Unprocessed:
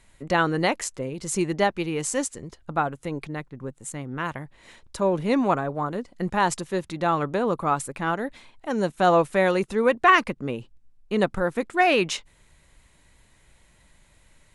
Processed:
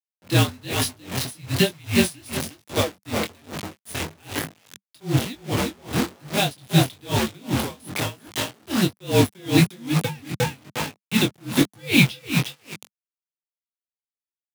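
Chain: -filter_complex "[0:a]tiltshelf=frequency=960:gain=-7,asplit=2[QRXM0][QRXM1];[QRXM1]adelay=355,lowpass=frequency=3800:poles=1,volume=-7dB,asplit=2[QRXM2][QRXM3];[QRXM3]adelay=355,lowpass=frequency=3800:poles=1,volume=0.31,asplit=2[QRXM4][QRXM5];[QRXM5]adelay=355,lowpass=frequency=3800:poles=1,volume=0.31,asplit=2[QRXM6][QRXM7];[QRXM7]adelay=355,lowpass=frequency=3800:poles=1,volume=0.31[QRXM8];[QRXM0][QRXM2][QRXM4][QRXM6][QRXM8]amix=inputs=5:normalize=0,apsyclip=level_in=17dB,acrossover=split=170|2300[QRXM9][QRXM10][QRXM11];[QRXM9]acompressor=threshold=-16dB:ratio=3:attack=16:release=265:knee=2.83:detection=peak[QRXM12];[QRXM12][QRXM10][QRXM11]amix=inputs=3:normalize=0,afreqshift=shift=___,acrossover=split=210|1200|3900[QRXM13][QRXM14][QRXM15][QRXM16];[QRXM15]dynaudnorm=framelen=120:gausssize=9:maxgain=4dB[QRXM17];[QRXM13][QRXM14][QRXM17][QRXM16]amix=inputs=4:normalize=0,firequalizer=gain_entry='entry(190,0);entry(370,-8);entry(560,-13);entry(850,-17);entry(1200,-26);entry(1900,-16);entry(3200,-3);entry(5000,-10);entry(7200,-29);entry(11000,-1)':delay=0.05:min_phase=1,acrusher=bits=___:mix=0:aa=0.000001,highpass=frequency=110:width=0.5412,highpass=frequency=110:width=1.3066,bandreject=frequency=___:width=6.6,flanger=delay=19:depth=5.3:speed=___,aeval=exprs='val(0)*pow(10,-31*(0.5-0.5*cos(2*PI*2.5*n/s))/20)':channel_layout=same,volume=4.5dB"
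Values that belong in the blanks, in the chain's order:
-220, 3, 200, 1.1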